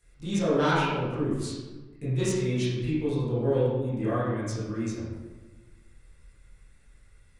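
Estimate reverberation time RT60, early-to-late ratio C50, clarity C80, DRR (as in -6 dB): 1.3 s, -1.5 dB, 2.0 dB, -11.5 dB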